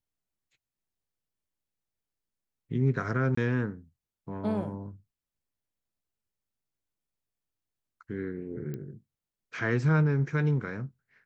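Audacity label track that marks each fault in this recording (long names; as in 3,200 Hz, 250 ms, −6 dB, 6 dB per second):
3.350000	3.370000	drop-out 24 ms
8.740000	8.740000	click −25 dBFS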